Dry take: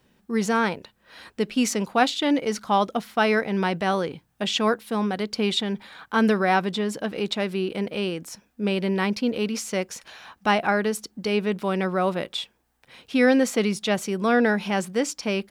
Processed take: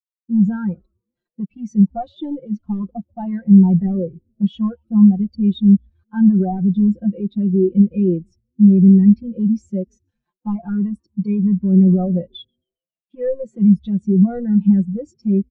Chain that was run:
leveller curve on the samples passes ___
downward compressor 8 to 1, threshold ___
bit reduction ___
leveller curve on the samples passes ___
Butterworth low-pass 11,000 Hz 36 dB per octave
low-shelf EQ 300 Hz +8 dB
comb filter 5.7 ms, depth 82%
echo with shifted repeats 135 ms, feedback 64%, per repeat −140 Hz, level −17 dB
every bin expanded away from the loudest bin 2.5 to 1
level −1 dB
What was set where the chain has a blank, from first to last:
2, −19 dBFS, 6 bits, 2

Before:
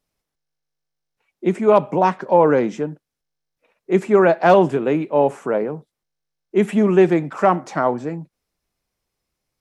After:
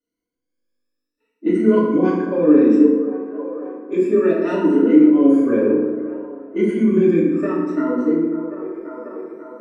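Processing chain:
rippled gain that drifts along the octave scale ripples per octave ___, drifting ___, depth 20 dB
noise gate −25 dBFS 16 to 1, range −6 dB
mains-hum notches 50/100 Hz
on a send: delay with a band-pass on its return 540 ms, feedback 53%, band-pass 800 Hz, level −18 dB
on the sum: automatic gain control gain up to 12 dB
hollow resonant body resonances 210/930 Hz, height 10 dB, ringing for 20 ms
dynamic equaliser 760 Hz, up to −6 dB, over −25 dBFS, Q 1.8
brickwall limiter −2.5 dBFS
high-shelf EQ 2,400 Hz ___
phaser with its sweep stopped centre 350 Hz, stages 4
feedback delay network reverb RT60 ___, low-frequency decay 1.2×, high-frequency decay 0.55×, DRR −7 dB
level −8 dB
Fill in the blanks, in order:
1.9, +0.62 Hz, −8.5 dB, 1.3 s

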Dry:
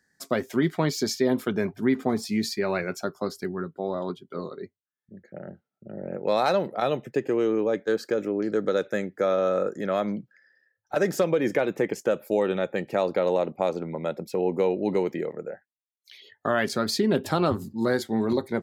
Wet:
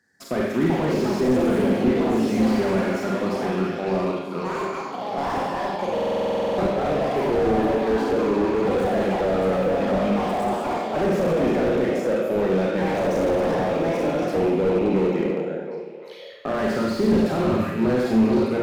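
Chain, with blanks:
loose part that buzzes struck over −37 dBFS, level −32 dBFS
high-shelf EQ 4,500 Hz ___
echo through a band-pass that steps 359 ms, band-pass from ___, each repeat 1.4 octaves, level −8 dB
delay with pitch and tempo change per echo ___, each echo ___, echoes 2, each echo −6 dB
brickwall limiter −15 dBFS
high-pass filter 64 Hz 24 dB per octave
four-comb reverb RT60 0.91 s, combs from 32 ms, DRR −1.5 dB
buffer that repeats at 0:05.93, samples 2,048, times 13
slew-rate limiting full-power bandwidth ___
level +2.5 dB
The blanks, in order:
−6.5 dB, 220 Hz, 460 ms, +5 semitones, 46 Hz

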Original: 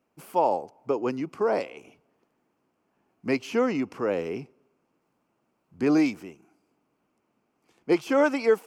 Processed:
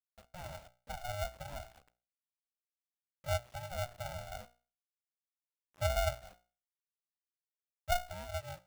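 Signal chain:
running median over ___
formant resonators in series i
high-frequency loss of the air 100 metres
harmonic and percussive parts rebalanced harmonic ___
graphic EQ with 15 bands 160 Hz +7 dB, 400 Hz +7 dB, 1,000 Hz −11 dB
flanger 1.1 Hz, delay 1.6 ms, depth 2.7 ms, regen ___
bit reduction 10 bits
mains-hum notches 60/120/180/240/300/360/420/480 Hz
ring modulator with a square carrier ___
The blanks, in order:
25 samples, −7 dB, +1%, 360 Hz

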